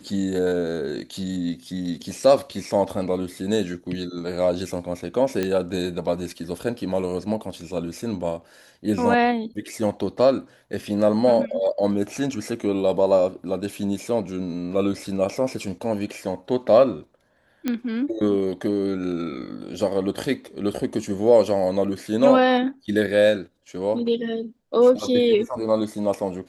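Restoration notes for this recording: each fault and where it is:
5.43 s: pop -11 dBFS
17.68 s: pop -11 dBFS

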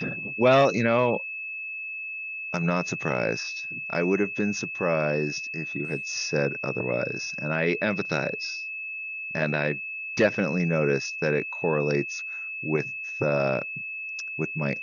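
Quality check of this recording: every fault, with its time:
whine 2.6 kHz -32 dBFS

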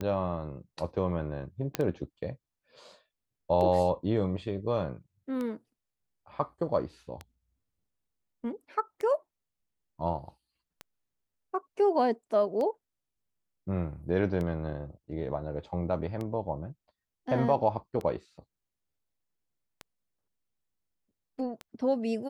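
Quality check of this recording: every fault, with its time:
tick 33 1/3 rpm -23 dBFS
1.75 s: pop -13 dBFS

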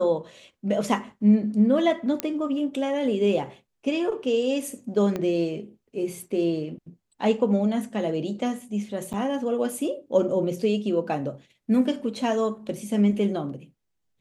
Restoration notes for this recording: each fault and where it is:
2.20 s: pop -9 dBFS
5.16 s: pop -16 dBFS
9.13–9.14 s: dropout 7.9 ms

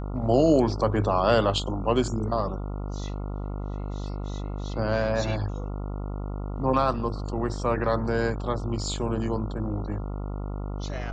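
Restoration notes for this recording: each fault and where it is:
buzz 50 Hz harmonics 28 -32 dBFS

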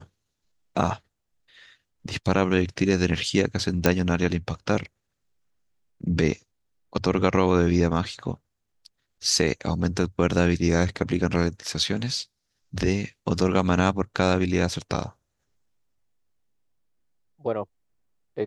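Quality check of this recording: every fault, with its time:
3.86 s: pop -4 dBFS

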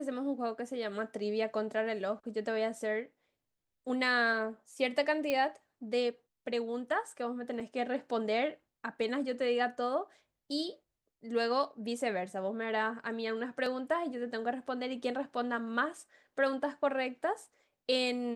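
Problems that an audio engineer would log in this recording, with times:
5.30 s: pop -18 dBFS
7.60 s: dropout 3.6 ms

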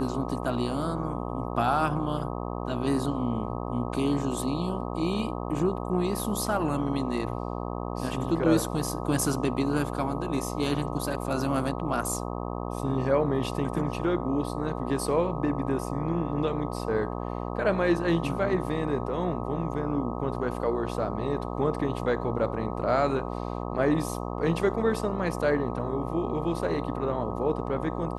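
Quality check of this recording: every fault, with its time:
buzz 60 Hz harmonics 21 -33 dBFS

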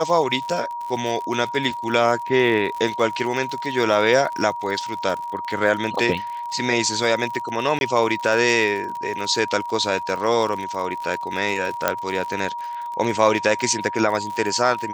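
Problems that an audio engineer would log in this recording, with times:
crackle 66 per s -29 dBFS
whine 950 Hz -27 dBFS
7.79–7.81 s: dropout 21 ms
11.88 s: pop -3 dBFS

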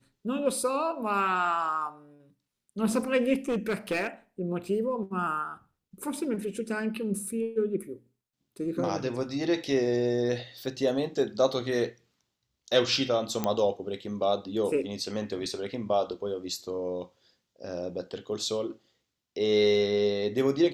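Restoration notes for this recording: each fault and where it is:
3.33–4.07 s: clipped -23.5 dBFS
13.44 s: pop -13 dBFS

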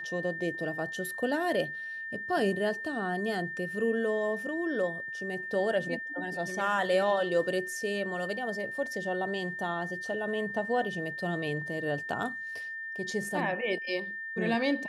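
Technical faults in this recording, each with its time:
whine 1.8 kHz -36 dBFS

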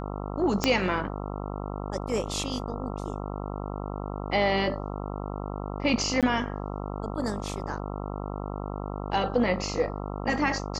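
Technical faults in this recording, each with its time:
buzz 50 Hz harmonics 27 -34 dBFS
0.64 s: pop -8 dBFS
6.21–6.23 s: dropout 17 ms

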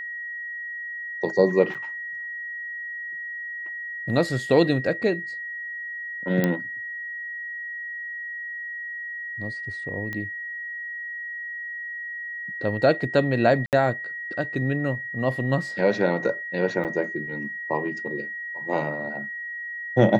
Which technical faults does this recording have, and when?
whine 1.9 kHz -31 dBFS
1.74–1.75 s: dropout 7.3 ms
6.44 s: pop -9 dBFS
10.13 s: pop -19 dBFS
13.66–13.73 s: dropout 68 ms
16.84–16.85 s: dropout 8.9 ms

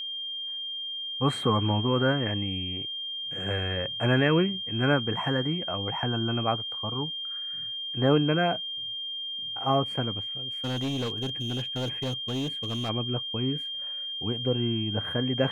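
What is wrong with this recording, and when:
whine 3.2 kHz -32 dBFS
10.64–12.90 s: clipped -26.5 dBFS

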